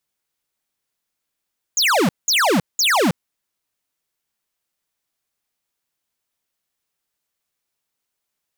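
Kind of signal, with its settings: burst of laser zaps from 7300 Hz, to 150 Hz, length 0.32 s square, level -16 dB, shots 3, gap 0.19 s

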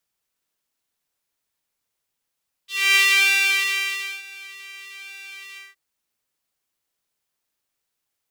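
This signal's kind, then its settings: synth patch with pulse-width modulation G4, oscillator 2 level -14.5 dB, sub -25.5 dB, filter highpass, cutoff 1800 Hz, Q 4, filter envelope 1 oct, filter decay 0.10 s, attack 0.263 s, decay 1.28 s, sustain -24 dB, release 0.18 s, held 2.89 s, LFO 1.1 Hz, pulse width 46%, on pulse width 9%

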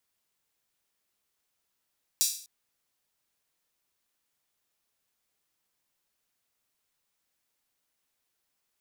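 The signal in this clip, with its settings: open hi-hat length 0.25 s, high-pass 5100 Hz, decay 0.48 s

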